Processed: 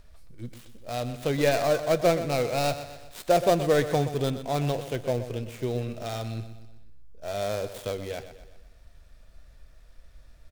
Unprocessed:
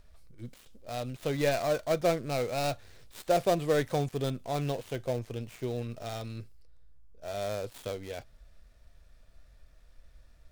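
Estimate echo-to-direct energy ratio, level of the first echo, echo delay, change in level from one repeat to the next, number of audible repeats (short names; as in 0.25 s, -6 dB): -11.0 dB, -12.0 dB, 0.124 s, -6.5 dB, 4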